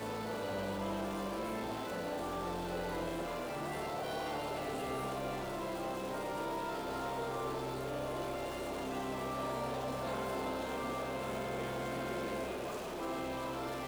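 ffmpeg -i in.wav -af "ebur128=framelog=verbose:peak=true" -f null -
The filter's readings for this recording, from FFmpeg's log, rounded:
Integrated loudness:
  I:         -38.6 LUFS
  Threshold: -48.6 LUFS
Loudness range:
  LRA:         0.7 LU
  Threshold: -58.6 LUFS
  LRA low:   -38.8 LUFS
  LRA high:  -38.1 LUFS
True peak:
  Peak:      -26.6 dBFS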